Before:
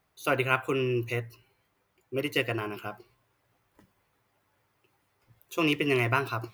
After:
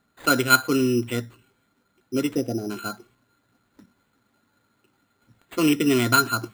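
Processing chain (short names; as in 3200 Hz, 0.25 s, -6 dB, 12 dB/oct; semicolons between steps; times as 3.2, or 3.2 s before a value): small resonant body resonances 240/1400 Hz, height 17 dB, ringing for 50 ms; spectral gain 2.33–2.7, 830–7000 Hz -24 dB; sample-and-hold 8×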